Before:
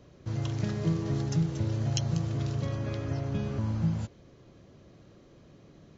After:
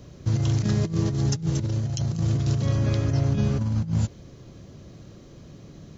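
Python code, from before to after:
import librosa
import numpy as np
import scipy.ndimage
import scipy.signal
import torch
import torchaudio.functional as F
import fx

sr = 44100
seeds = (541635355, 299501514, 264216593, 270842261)

y = fx.bass_treble(x, sr, bass_db=6, treble_db=8)
y = fx.over_compress(y, sr, threshold_db=-26.0, ratio=-0.5)
y = y * 10.0 ** (3.5 / 20.0)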